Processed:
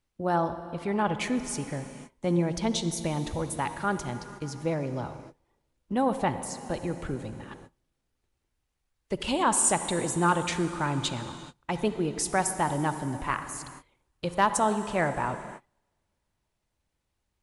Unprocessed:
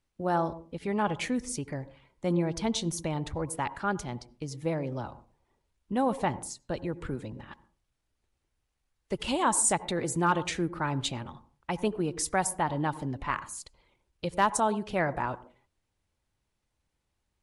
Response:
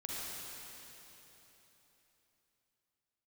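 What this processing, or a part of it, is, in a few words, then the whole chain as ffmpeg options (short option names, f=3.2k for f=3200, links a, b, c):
keyed gated reverb: -filter_complex "[0:a]asplit=3[a][b][c];[1:a]atrim=start_sample=2205[d];[b][d]afir=irnorm=-1:irlink=0[e];[c]apad=whole_len=768446[f];[e][f]sidechaingate=range=-33dB:threshold=-58dB:ratio=16:detection=peak,volume=-9.5dB[g];[a][g]amix=inputs=2:normalize=0"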